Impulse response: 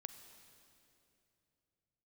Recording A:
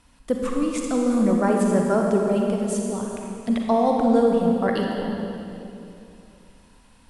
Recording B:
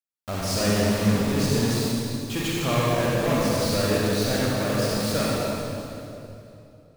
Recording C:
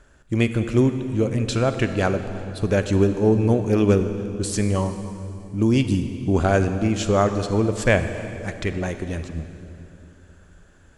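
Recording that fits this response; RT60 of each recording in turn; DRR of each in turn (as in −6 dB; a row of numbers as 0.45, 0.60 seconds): C; 2.9, 2.9, 2.9 seconds; 0.0, −6.0, 9.0 decibels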